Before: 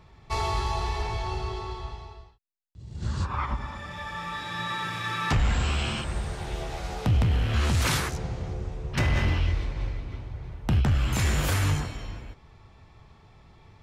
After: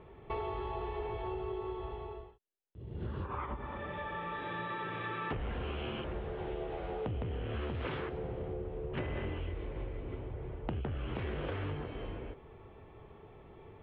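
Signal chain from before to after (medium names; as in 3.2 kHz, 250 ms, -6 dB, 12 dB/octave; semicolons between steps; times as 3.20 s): elliptic low-pass 3.2 kHz, stop band 60 dB; peaking EQ 420 Hz +14.5 dB 1.2 oct; compression 4:1, threshold -33 dBFS, peak gain reduction 13.5 dB; trim -3.5 dB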